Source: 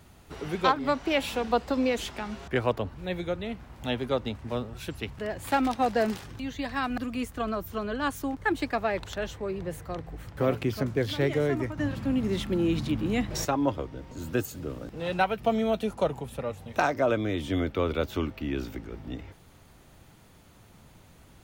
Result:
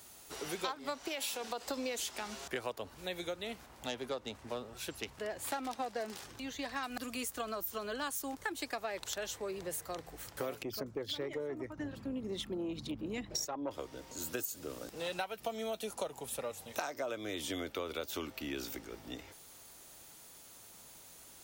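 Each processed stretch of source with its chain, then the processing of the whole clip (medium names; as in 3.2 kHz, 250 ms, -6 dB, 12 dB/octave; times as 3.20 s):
1.08–1.67 s: bass shelf 140 Hz -10.5 dB + compression, threshold -27 dBFS
3.66–6.83 s: self-modulated delay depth 0.057 ms + treble shelf 3.7 kHz -8 dB
10.62–13.71 s: resonances exaggerated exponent 1.5 + valve stage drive 17 dB, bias 0.35
whole clip: tone controls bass -13 dB, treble +14 dB; compression 6:1, threshold -32 dBFS; trim -3 dB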